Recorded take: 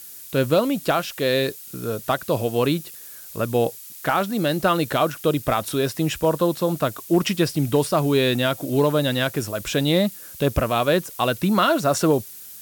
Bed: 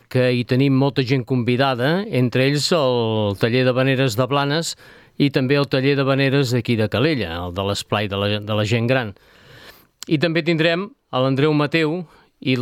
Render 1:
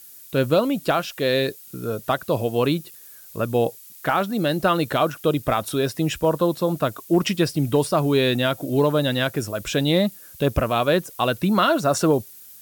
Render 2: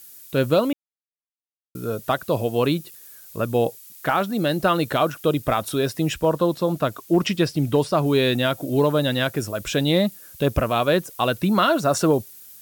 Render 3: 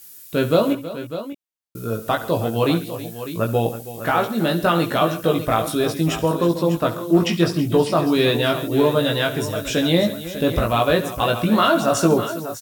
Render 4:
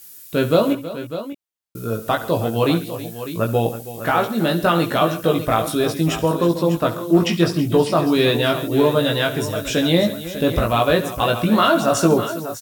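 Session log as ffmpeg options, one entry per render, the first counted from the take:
-af "afftdn=nr=6:nf=-40"
-filter_complex "[0:a]asettb=1/sr,asplit=3[a][b][c];[a]atrim=end=6.144[d];[b]atrim=start=6.14:end=8.06,asetpts=PTS-STARTPTS,afade=t=in:d=0.004:c=qsin,afade=t=out:st=1.916:d=0.004:c=qsin,acrossover=split=6700[e][f];[f]acompressor=threshold=-43dB:ratio=4:attack=1:release=60[g];[e][g]amix=inputs=2:normalize=0[h];[c]atrim=start=8.056[i];[d][h]acrossfade=d=0.004:c1=hsin:c2=qsin[j];[j][i]acrossfade=d=0.004:c1=qsin:c2=hsin,asplit=3[k][l][m];[k]atrim=end=0.73,asetpts=PTS-STARTPTS,afade=t=out:st=0.726:d=0.004:c=hsin[n];[l]atrim=start=0.73:end=1.75,asetpts=PTS-STARTPTS,volume=0[o];[m]atrim=start=1.75,asetpts=PTS-STARTPTS,afade=t=in:d=0.004:c=hsin[p];[n][o][p]concat=n=3:v=0:a=1"
-filter_complex "[0:a]asplit=2[a][b];[b]adelay=18,volume=-3dB[c];[a][c]amix=inputs=2:normalize=0,aecho=1:1:69|137|322|599:0.178|0.133|0.178|0.251"
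-af "volume=1dB"

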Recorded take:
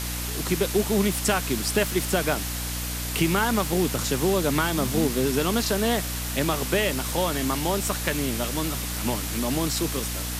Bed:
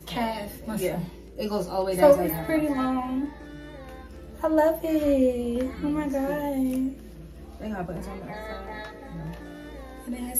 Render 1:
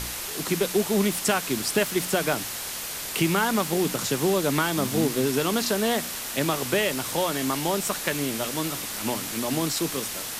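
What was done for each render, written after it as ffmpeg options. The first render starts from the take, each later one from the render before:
-af "bandreject=f=60:t=h:w=4,bandreject=f=120:t=h:w=4,bandreject=f=180:t=h:w=4,bandreject=f=240:t=h:w=4,bandreject=f=300:t=h:w=4"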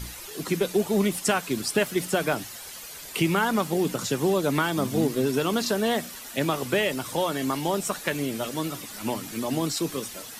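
-af "afftdn=nr=11:nf=-34"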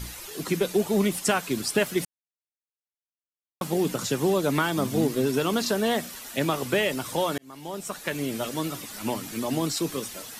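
-filter_complex "[0:a]asplit=4[a][b][c][d];[a]atrim=end=2.05,asetpts=PTS-STARTPTS,afade=t=out:st=2.046:d=0.004:c=hsin[e];[b]atrim=start=2.05:end=3.61,asetpts=PTS-STARTPTS,volume=0[f];[c]atrim=start=3.61:end=7.38,asetpts=PTS-STARTPTS,afade=t=in:d=0.004:c=hsin,afade=t=out:st=3.766:d=0.004:c=hsin[g];[d]atrim=start=7.38,asetpts=PTS-STARTPTS,afade=t=in:d=0.96[h];[e][f][g][h]concat=n=4:v=0:a=1"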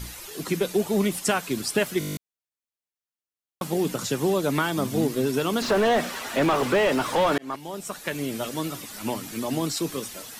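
-filter_complex "[0:a]asettb=1/sr,asplit=3[a][b][c];[a]atrim=end=5.624[d];[b]atrim=start=5.62:end=7.56,asetpts=PTS-STARTPTS,afade=t=in:d=0.004:c=qsin,afade=t=out:st=1.936:d=0.004:c=qsin,asplit=2[e][f];[f]highpass=f=720:p=1,volume=26dB,asoftclip=type=tanh:threshold=-11.5dB[g];[e][g]amix=inputs=2:normalize=0,lowpass=f=1.1k:p=1,volume=-6dB[h];[c]atrim=start=7.556[i];[d][h]acrossfade=d=0.004:c1=hsin:c2=qsin[j];[j][i]acrossfade=d=0.004:c1=qsin:c2=hsin,asplit=10[k][l][m][n][o][p][q][r][s][t];[k]atrim=end=2.012[u];[l]atrim=start=1.988:end=2.012[v];[m]atrim=start=1.988:end=2.012[w];[n]atrim=start=1.988:end=2.012[x];[o]atrim=start=1.988:end=2.012[y];[p]atrim=start=1.988:end=2.012[z];[q]atrim=start=1.988:end=2.012[aa];[r]atrim=start=1.988:end=2.012[ab];[s]atrim=start=1.988:end=2.012[ac];[t]atrim=start=2.168[ad];[u][v]acrossfade=d=0.004:c1=hsin:c2=hsin[ae];[ae][w]acrossfade=d=0.004:c1=hsin:c2=hsin[af];[af][x]acrossfade=d=0.004:c1=hsin:c2=hsin[ag];[ag][y]acrossfade=d=0.004:c1=hsin:c2=hsin[ah];[ah][z]acrossfade=d=0.004:c1=hsin:c2=hsin[ai];[ai][aa]acrossfade=d=0.004:c1=hsin:c2=hsin[aj];[aj][ab]acrossfade=d=0.004:c1=hsin:c2=hsin[ak];[ak][ac]acrossfade=d=0.004:c1=hsin:c2=hsin[al];[al][ad]acrossfade=d=0.004:c1=hsin:c2=hsin"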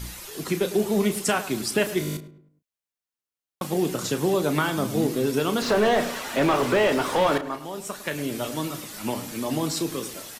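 -filter_complex "[0:a]asplit=2[a][b];[b]adelay=33,volume=-10.5dB[c];[a][c]amix=inputs=2:normalize=0,asplit=2[d][e];[e]adelay=105,lowpass=f=1.6k:p=1,volume=-12.5dB,asplit=2[f][g];[g]adelay=105,lowpass=f=1.6k:p=1,volume=0.42,asplit=2[h][i];[i]adelay=105,lowpass=f=1.6k:p=1,volume=0.42,asplit=2[j][k];[k]adelay=105,lowpass=f=1.6k:p=1,volume=0.42[l];[d][f][h][j][l]amix=inputs=5:normalize=0"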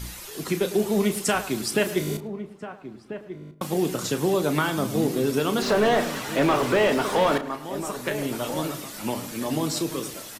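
-filter_complex "[0:a]asplit=2[a][b];[b]adelay=1341,volume=-11dB,highshelf=f=4k:g=-30.2[c];[a][c]amix=inputs=2:normalize=0"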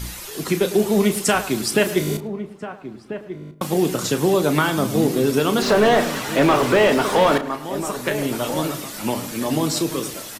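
-af "volume=5dB"

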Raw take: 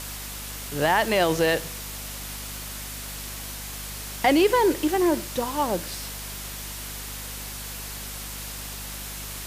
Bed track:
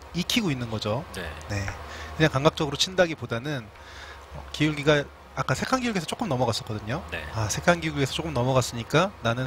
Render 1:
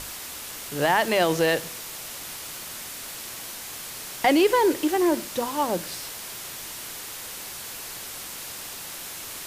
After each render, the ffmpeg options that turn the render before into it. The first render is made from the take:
-af "bandreject=f=50:t=h:w=6,bandreject=f=100:t=h:w=6,bandreject=f=150:t=h:w=6,bandreject=f=200:t=h:w=6,bandreject=f=250:t=h:w=6"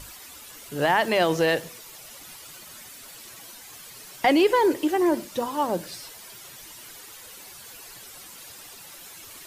-af "afftdn=nr=11:nf=-38"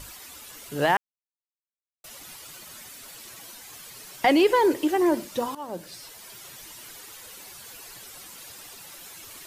-filter_complex "[0:a]asplit=4[a][b][c][d];[a]atrim=end=0.97,asetpts=PTS-STARTPTS,afade=t=out:st=0.966:d=0.004:c=hsin[e];[b]atrim=start=0.97:end=2.04,asetpts=PTS-STARTPTS,volume=0[f];[c]atrim=start=2.04:end=5.55,asetpts=PTS-STARTPTS,afade=t=in:d=0.004:c=hsin,afade=t=out:st=3.506:d=0.004:c=hsin:silence=0.158489[g];[d]atrim=start=5.55,asetpts=PTS-STARTPTS,afade=t=in:d=1.03:c=qsin:silence=0.158489[h];[e][f][g][h]concat=n=4:v=0:a=1"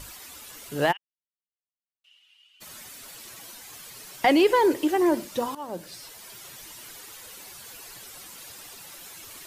-filter_complex "[0:a]asplit=3[a][b][c];[a]afade=t=out:st=0.91:d=0.02[d];[b]bandpass=f=2.9k:t=q:w=14,afade=t=in:st=0.91:d=0.02,afade=t=out:st=2.6:d=0.02[e];[c]afade=t=in:st=2.6:d=0.02[f];[d][e][f]amix=inputs=3:normalize=0"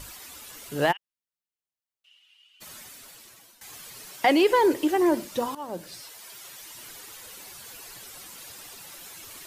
-filter_complex "[0:a]asettb=1/sr,asplit=3[a][b][c];[a]atrim=end=4.124[d];[b]atrim=start=4.12:end=4.52,asetpts=PTS-STARTPTS,afade=t=in:d=0.004:c=qsin,afade=t=out:st=0.396:d=0.004:c=qsin,highpass=f=190:p=1[e];[c]atrim=start=4.516[f];[d][e]acrossfade=d=0.004:c1=hsin:c2=qsin[g];[g][f]acrossfade=d=0.004:c1=qsin:c2=hsin,asettb=1/sr,asplit=3[h][i][j];[h]atrim=end=6.024[k];[i]atrim=start=6.02:end=6.75,asetpts=PTS-STARTPTS,afade=t=in:d=0.004:c=qsin,afade=t=out:st=0.726:d=0.004:c=qsin,lowshelf=f=320:g=-9.5[l];[j]atrim=start=6.746[m];[k][l]acrossfade=d=0.004:c1=hsin:c2=qsin[n];[n][m]acrossfade=d=0.004:c1=qsin:c2=hsin,asplit=2[o][p];[o]atrim=end=3.61,asetpts=PTS-STARTPTS,afade=t=out:st=2.69:d=0.92:silence=0.177828[q];[p]atrim=start=3.61,asetpts=PTS-STARTPTS,afade=t=in:d=0.004:c=hsin:silence=0.177828[r];[q][r]concat=n=2:v=0:a=1"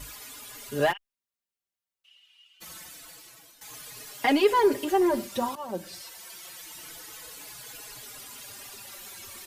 -filter_complex "[0:a]asplit=2[a][b];[b]volume=25dB,asoftclip=hard,volume=-25dB,volume=-7dB[c];[a][c]amix=inputs=2:normalize=0,asplit=2[d][e];[e]adelay=4.3,afreqshift=-0.26[f];[d][f]amix=inputs=2:normalize=1"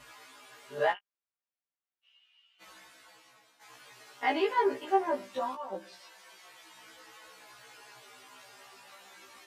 -af "bandpass=f=1k:t=q:w=0.54:csg=0,afftfilt=real='re*1.73*eq(mod(b,3),0)':imag='im*1.73*eq(mod(b,3),0)':win_size=2048:overlap=0.75"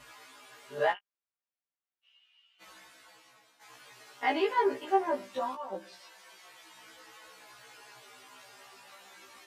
-af anull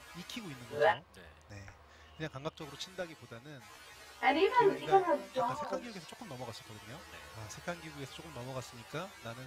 -filter_complex "[1:a]volume=-20dB[a];[0:a][a]amix=inputs=2:normalize=0"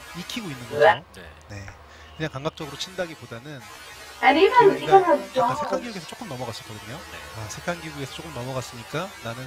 -af "volume=12dB"

